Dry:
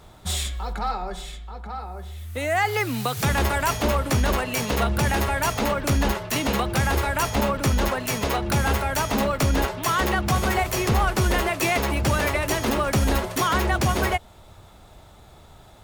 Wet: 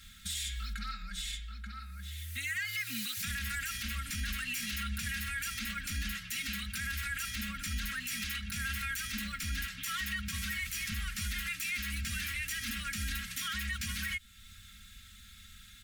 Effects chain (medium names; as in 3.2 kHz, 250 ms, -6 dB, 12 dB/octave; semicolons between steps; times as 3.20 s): bass shelf 260 Hz -9.5 dB; compression 1.5:1, threshold -39 dBFS, peak gain reduction 7.5 dB; inverse Chebyshev band-stop 320–1000 Hz, stop band 40 dB; comb 3.7 ms, depth 99%; peak limiter -27 dBFS, peak gain reduction 9.5 dB